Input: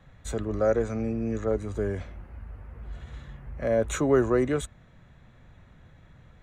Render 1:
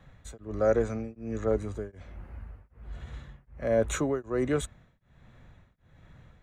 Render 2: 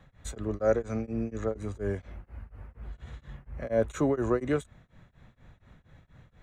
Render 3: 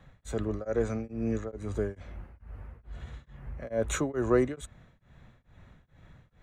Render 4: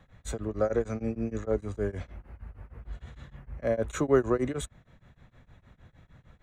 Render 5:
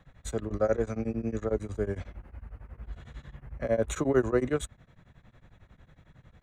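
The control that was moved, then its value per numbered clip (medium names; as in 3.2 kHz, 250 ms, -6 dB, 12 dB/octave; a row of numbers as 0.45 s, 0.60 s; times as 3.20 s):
tremolo of two beating tones, nulls at: 1.3 Hz, 4.2 Hz, 2.3 Hz, 6.5 Hz, 11 Hz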